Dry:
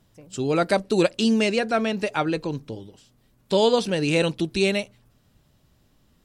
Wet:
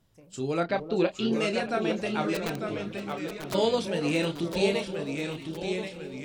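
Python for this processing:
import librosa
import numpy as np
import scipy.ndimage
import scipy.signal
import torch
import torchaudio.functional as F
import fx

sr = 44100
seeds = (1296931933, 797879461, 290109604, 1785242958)

y = fx.lowpass(x, sr, hz=3900.0, slope=24, at=(0.6, 1.33))
y = fx.chorus_voices(y, sr, voices=4, hz=0.87, base_ms=29, depth_ms=1.7, mix_pct=30)
y = fx.overflow_wrap(y, sr, gain_db=23.5, at=(2.34, 3.53), fade=0.02)
y = fx.echo_alternate(y, sr, ms=315, hz=970.0, feedback_pct=66, wet_db=-11)
y = fx.echo_pitch(y, sr, ms=796, semitones=-1, count=3, db_per_echo=-6.0)
y = y * 10.0 ** (-4.0 / 20.0)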